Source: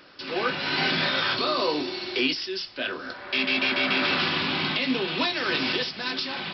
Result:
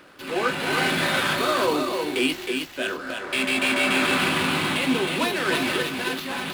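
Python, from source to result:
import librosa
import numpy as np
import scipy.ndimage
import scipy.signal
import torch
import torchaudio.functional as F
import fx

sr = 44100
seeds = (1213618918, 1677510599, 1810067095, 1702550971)

y = scipy.signal.medfilt(x, 9)
y = y + 10.0 ** (-5.0 / 20.0) * np.pad(y, (int(314 * sr / 1000.0), 0))[:len(y)]
y = y * 10.0 ** (3.0 / 20.0)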